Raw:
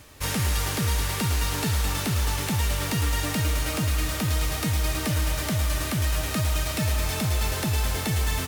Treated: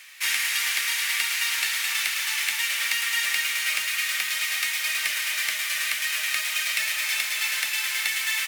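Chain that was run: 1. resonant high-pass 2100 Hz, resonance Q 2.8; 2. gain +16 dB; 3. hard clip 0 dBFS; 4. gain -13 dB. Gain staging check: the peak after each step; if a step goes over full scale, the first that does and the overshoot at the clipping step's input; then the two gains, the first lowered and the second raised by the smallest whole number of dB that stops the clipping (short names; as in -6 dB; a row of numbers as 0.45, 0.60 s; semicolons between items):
-12.5, +3.5, 0.0, -13.0 dBFS; step 2, 3.5 dB; step 2 +12 dB, step 4 -9 dB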